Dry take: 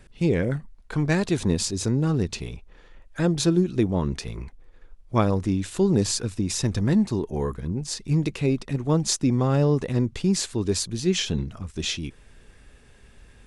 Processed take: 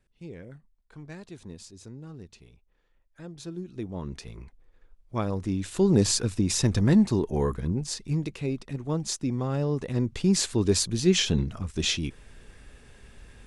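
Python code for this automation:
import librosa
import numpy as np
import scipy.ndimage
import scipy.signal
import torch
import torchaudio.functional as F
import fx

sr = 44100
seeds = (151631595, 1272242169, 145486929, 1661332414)

y = fx.gain(x, sr, db=fx.line((3.3, -20.0), (4.16, -8.5), (5.16, -8.5), (6.02, 1.0), (7.68, 1.0), (8.28, -7.0), (9.66, -7.0), (10.46, 1.5)))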